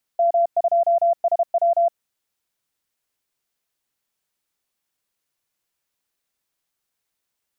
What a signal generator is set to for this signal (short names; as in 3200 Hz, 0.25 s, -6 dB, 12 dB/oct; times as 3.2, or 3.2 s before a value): Morse "M2SW" 32 wpm 683 Hz -14 dBFS